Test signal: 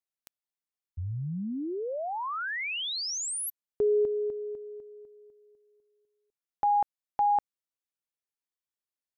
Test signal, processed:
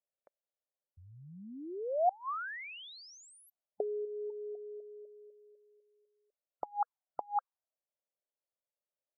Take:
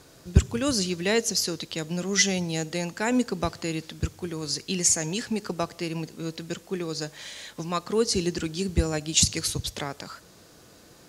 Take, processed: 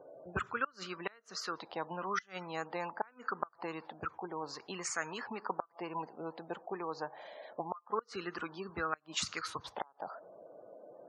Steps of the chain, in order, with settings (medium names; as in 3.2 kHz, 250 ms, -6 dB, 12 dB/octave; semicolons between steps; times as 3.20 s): auto-wah 570–1300 Hz, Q 5.5, up, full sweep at -22.5 dBFS; inverted gate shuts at -31 dBFS, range -30 dB; spectral gate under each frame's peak -25 dB strong; trim +11 dB